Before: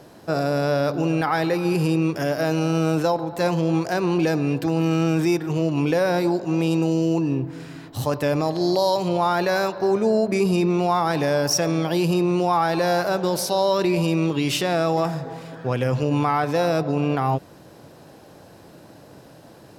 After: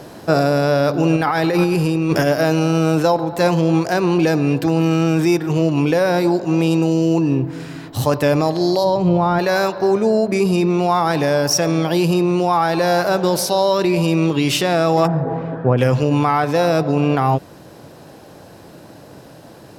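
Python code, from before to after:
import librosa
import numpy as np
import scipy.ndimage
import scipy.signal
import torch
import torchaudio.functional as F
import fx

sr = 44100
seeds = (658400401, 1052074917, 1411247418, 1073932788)

y = fx.over_compress(x, sr, threshold_db=-26.0, ratio=-1.0, at=(1.16, 2.27))
y = fx.riaa(y, sr, side='playback', at=(8.83, 9.38), fade=0.02)
y = fx.bessel_lowpass(y, sr, hz=980.0, order=2, at=(15.06, 15.77), fade=0.02)
y = fx.rider(y, sr, range_db=10, speed_s=0.5)
y = F.gain(torch.from_numpy(y), 5.0).numpy()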